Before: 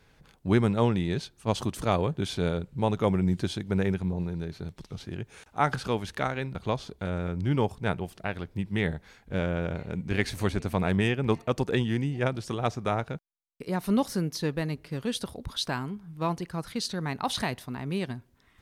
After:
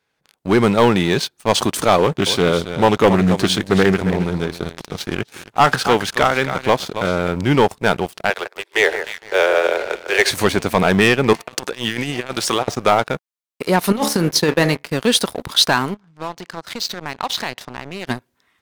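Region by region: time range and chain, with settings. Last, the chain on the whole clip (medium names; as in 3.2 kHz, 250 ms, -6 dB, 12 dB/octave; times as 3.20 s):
1.99–7.21 s: delay 273 ms -12.5 dB + loudspeaker Doppler distortion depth 0.25 ms
8.30–10.31 s: steep high-pass 360 Hz 72 dB/octave + echo whose repeats swap between lows and highs 152 ms, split 1.9 kHz, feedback 62%, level -9 dB
11.33–12.68 s: high-pass 89 Hz 6 dB/octave + bass shelf 420 Hz -9 dB + compressor with a negative ratio -37 dBFS, ratio -0.5
13.92–14.84 s: de-hum 71.83 Hz, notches 36 + gate -37 dBFS, range -7 dB + compressor with a negative ratio -28 dBFS, ratio -0.5
15.94–18.07 s: low-pass 6.9 kHz 24 dB/octave + compression 3:1, threshold -42 dBFS
whole clip: high-pass 460 Hz 6 dB/octave; waveshaping leveller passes 3; level rider gain up to 12 dB; trim -2 dB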